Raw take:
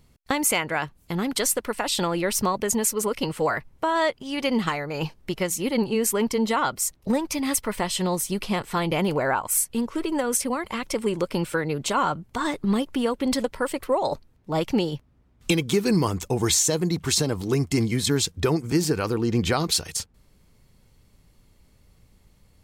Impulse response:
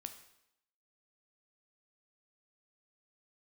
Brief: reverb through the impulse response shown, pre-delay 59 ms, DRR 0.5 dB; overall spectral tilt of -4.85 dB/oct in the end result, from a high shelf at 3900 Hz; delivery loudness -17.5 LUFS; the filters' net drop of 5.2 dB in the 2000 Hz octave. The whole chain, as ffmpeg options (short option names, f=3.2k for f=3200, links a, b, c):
-filter_complex "[0:a]equalizer=f=2k:t=o:g=-5.5,highshelf=f=3.9k:g=-5.5,asplit=2[a][b];[1:a]atrim=start_sample=2205,adelay=59[c];[b][c]afir=irnorm=-1:irlink=0,volume=3.5dB[d];[a][d]amix=inputs=2:normalize=0,volume=6dB"